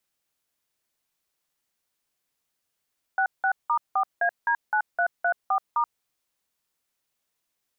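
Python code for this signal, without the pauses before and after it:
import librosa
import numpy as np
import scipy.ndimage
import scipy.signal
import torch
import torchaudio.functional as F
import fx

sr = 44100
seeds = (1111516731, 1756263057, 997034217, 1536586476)

y = fx.dtmf(sr, digits='66*4AD9334*', tone_ms=80, gap_ms=178, level_db=-22.5)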